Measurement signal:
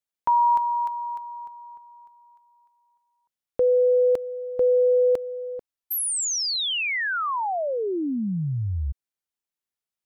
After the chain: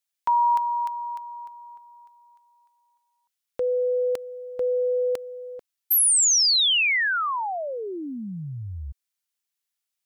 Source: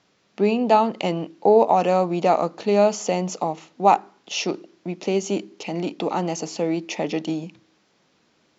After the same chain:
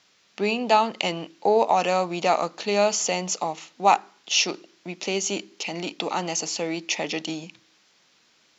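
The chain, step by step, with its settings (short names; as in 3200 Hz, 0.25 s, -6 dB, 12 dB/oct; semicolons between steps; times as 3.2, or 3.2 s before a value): tilt shelf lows -7.5 dB, about 1100 Hz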